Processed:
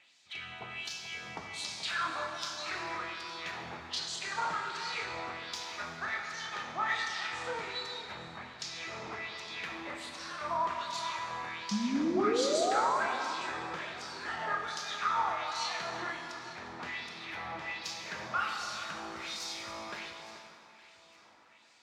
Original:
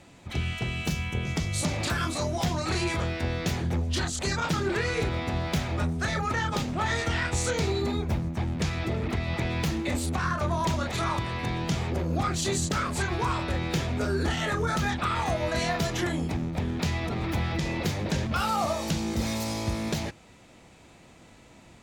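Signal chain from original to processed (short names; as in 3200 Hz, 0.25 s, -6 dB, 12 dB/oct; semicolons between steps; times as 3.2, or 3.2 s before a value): LFO band-pass sine 1.3 Hz 930–5200 Hz; painted sound rise, 11.71–12.98, 200–1100 Hz -32 dBFS; echo with dull and thin repeats by turns 0.431 s, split 1500 Hz, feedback 55%, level -11.5 dB; plate-style reverb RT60 2.4 s, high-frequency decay 0.85×, DRR 2 dB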